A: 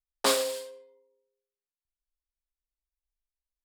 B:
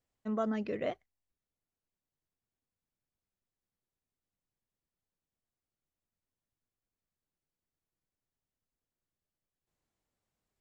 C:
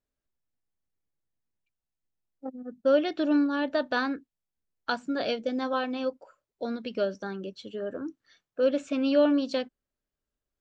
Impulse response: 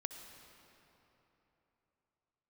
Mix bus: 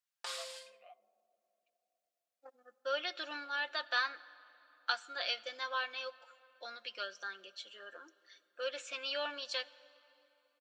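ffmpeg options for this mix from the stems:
-filter_complex "[0:a]lowpass=6.9k,alimiter=limit=-19dB:level=0:latency=1:release=357,volume=-5.5dB[a];[1:a]asplit=3[b][c][d];[b]bandpass=f=730:t=q:w=8,volume=0dB[e];[c]bandpass=f=1.09k:t=q:w=8,volume=-6dB[f];[d]bandpass=f=2.44k:t=q:w=8,volume=-9dB[g];[e][f][g]amix=inputs=3:normalize=0,volume=-5dB,asplit=2[h][i];[i]volume=-18.5dB[j];[2:a]highpass=1.5k,volume=-2dB,asplit=2[k][l];[l]volume=-9.5dB[m];[a][h]amix=inputs=2:normalize=0,highpass=1.2k,alimiter=level_in=8dB:limit=-24dB:level=0:latency=1,volume=-8dB,volume=0dB[n];[3:a]atrim=start_sample=2205[o];[j][m]amix=inputs=2:normalize=0[p];[p][o]afir=irnorm=-1:irlink=0[q];[k][n][q]amix=inputs=3:normalize=0,highpass=230,aecho=1:1:5.7:0.52"

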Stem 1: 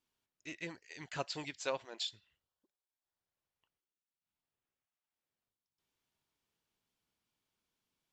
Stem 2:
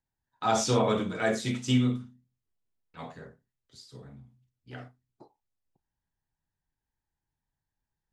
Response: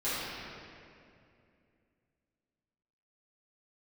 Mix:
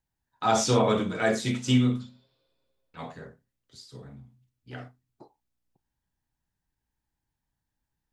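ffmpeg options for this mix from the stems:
-filter_complex "[0:a]aeval=exprs='val(0)+0.000224*(sin(2*PI*60*n/s)+sin(2*PI*2*60*n/s)/2+sin(2*PI*3*60*n/s)/3+sin(2*PI*4*60*n/s)/4+sin(2*PI*5*60*n/s)/5)':c=same,volume=-19dB,asplit=2[a][b];[b]volume=-15dB[c];[1:a]volume=2.5dB[d];[2:a]atrim=start_sample=2205[e];[c][e]afir=irnorm=-1:irlink=0[f];[a][d][f]amix=inputs=3:normalize=0"

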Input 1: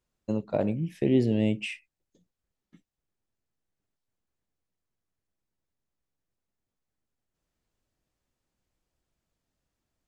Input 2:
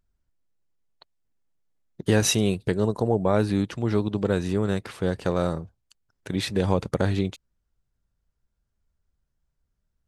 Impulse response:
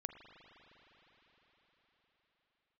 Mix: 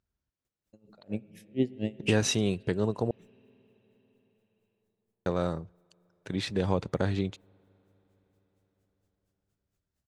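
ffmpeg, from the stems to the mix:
-filter_complex "[0:a]highshelf=f=6.2k:g=7.5,bandreject=f=990:w=5.1,aeval=exprs='val(0)*pow(10,-39*(0.5-0.5*cos(2*PI*4.3*n/s))/20)':c=same,adelay=450,volume=3dB,asplit=2[a][b];[b]volume=-12.5dB[c];[1:a]highpass=63,lowpass=7.3k,volume=-5dB,asplit=3[d][e][f];[d]atrim=end=3.11,asetpts=PTS-STARTPTS,afade=t=out:st=3.106:d=0.004:c=hsin[g];[e]atrim=start=3.11:end=5.26,asetpts=PTS-STARTPTS,volume=0[h];[f]atrim=start=5.26,asetpts=PTS-STARTPTS,afade=t=in:d=0.004:c=hsin[i];[g][h][i]concat=n=3:v=0:a=1,asplit=3[j][k][l];[k]volume=-23.5dB[m];[l]apad=whole_len=464000[n];[a][n]sidechaingate=range=-8dB:threshold=-59dB:ratio=16:detection=peak[o];[2:a]atrim=start_sample=2205[p];[c][m]amix=inputs=2:normalize=0[q];[q][p]afir=irnorm=-1:irlink=0[r];[o][j][r]amix=inputs=3:normalize=0"

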